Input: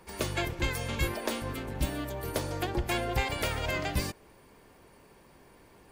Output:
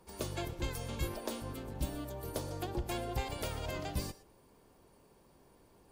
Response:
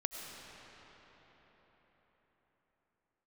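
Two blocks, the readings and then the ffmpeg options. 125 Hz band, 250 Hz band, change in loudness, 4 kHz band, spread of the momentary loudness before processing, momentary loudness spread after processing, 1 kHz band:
−5.5 dB, −6.0 dB, −7.0 dB, −8.5 dB, 5 LU, 4 LU, −7.5 dB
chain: -filter_complex "[0:a]equalizer=frequency=2000:width=1.2:gain=-8.5[link_01];[1:a]atrim=start_sample=2205,atrim=end_sample=3969,asetrate=31752,aresample=44100[link_02];[link_01][link_02]afir=irnorm=-1:irlink=0,volume=-6dB"

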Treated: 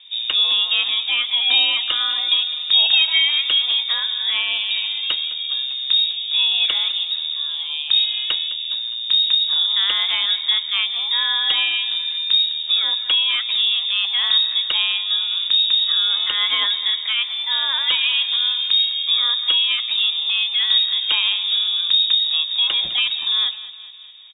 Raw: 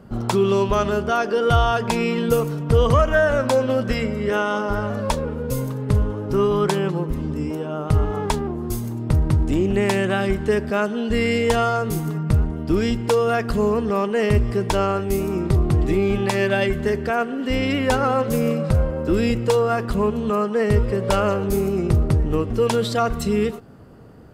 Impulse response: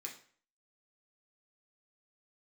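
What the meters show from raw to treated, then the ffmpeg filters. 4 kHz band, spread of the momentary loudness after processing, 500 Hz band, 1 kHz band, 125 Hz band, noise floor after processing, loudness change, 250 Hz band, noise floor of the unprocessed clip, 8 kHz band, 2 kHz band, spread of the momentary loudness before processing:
+22.0 dB, 6 LU, below −25 dB, −11.5 dB, below −40 dB, −28 dBFS, +4.0 dB, below −30 dB, −29 dBFS, below −40 dB, +3.0 dB, 6 LU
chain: -filter_complex "[0:a]asplit=2[link_01][link_02];[link_02]aecho=0:1:207|414|621|828|1035:0.168|0.0907|0.049|0.0264|0.0143[link_03];[link_01][link_03]amix=inputs=2:normalize=0,lowpass=frequency=3200:width_type=q:width=0.5098,lowpass=frequency=3200:width_type=q:width=0.6013,lowpass=frequency=3200:width_type=q:width=0.9,lowpass=frequency=3200:width_type=q:width=2.563,afreqshift=-3800,bandreject=frequency=430:width=12"

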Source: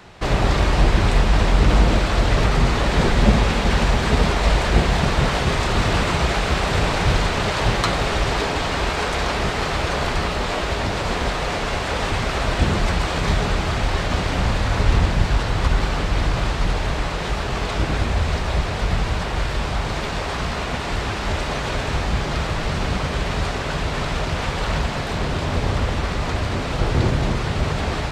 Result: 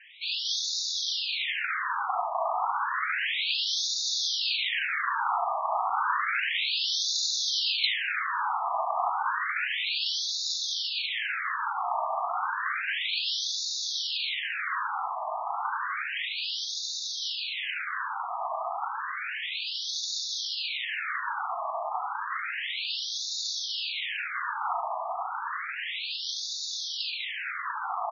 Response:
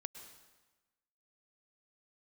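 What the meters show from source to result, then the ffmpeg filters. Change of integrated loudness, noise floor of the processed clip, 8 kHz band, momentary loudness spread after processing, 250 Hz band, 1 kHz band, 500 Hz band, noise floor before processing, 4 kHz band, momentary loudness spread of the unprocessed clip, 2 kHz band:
−7.5 dB, −35 dBFS, −2.0 dB, 7 LU, below −40 dB, −5.0 dB, −17.0 dB, −25 dBFS, −0.5 dB, 6 LU, −5.5 dB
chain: -filter_complex "[0:a]bass=frequency=250:gain=14,treble=frequency=4000:gain=9,afftfilt=real='hypot(re,im)*cos(2*PI*random(0))':imag='hypot(re,im)*sin(2*PI*random(1))':win_size=512:overlap=0.75,asplit=2[link_01][link_02];[link_02]aecho=0:1:38|73:0.473|0.447[link_03];[link_01][link_03]amix=inputs=2:normalize=0,afftfilt=real='re*between(b*sr/1024,880*pow(5000/880,0.5+0.5*sin(2*PI*0.31*pts/sr))/1.41,880*pow(5000/880,0.5+0.5*sin(2*PI*0.31*pts/sr))*1.41)':imag='im*between(b*sr/1024,880*pow(5000/880,0.5+0.5*sin(2*PI*0.31*pts/sr))/1.41,880*pow(5000/880,0.5+0.5*sin(2*PI*0.31*pts/sr))*1.41)':win_size=1024:overlap=0.75,volume=4.5dB"

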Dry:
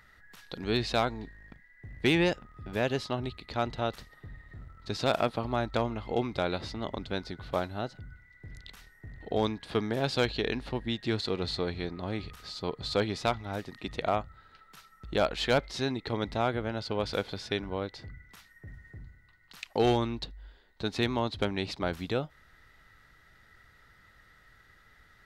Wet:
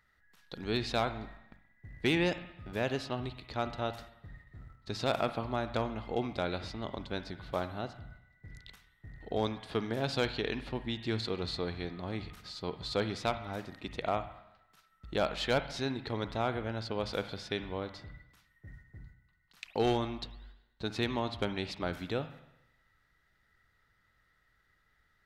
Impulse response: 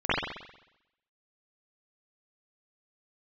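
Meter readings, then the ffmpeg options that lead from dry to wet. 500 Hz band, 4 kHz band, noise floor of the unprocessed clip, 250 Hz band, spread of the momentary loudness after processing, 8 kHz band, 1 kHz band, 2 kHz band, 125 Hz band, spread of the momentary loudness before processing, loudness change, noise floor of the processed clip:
−3.5 dB, −3.5 dB, −61 dBFS, −3.5 dB, 20 LU, −3.5 dB, −3.5 dB, −3.0 dB, −3.5 dB, 21 LU, −3.5 dB, −72 dBFS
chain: -filter_complex "[0:a]agate=range=-9dB:threshold=-49dB:ratio=16:detection=peak,asplit=2[link_01][link_02];[link_02]equalizer=frequency=420:width=1.8:gain=-12[link_03];[1:a]atrim=start_sample=2205[link_04];[link_03][link_04]afir=irnorm=-1:irlink=0,volume=-24.5dB[link_05];[link_01][link_05]amix=inputs=2:normalize=0,volume=-4dB"

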